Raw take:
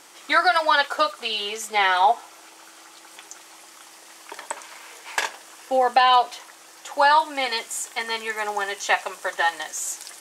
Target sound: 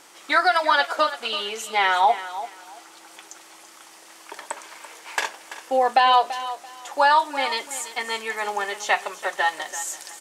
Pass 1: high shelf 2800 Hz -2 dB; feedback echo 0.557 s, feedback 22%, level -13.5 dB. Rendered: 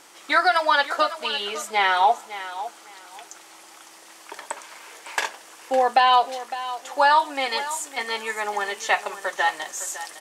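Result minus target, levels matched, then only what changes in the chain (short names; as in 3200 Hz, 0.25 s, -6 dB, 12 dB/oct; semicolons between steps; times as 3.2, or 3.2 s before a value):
echo 0.221 s late
change: feedback echo 0.336 s, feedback 22%, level -13.5 dB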